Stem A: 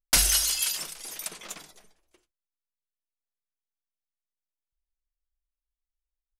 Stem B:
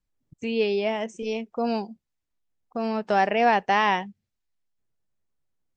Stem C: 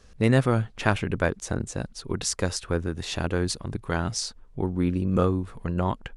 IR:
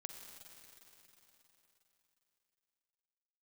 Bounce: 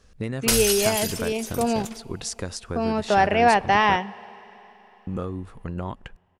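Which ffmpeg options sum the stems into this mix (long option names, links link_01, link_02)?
-filter_complex "[0:a]adelay=350,volume=-1.5dB,asplit=2[link_01][link_02];[link_02]volume=-17.5dB[link_03];[1:a]volume=1dB,asplit=3[link_04][link_05][link_06];[link_05]volume=-9.5dB[link_07];[2:a]acompressor=threshold=-23dB:ratio=6,volume=-3dB,asplit=3[link_08][link_09][link_10];[link_08]atrim=end=3.96,asetpts=PTS-STARTPTS,afade=type=out:start_time=3.956:duration=0.004:curve=hsin[link_11];[link_09]atrim=start=3.96:end=5.07,asetpts=PTS-STARTPTS,volume=0[link_12];[link_10]atrim=start=5.07,asetpts=PTS-STARTPTS,afade=type=in:duration=0.004:curve=hsin[link_13];[link_11][link_12][link_13]concat=n=3:v=0:a=1,asplit=2[link_14][link_15];[link_15]volume=-21dB[link_16];[link_06]apad=whole_len=297271[link_17];[link_01][link_17]sidechaingate=range=-33dB:threshold=-45dB:ratio=16:detection=peak[link_18];[3:a]atrim=start_sample=2205[link_19];[link_03][link_07][link_16]amix=inputs=3:normalize=0[link_20];[link_20][link_19]afir=irnorm=-1:irlink=0[link_21];[link_18][link_04][link_14][link_21]amix=inputs=4:normalize=0"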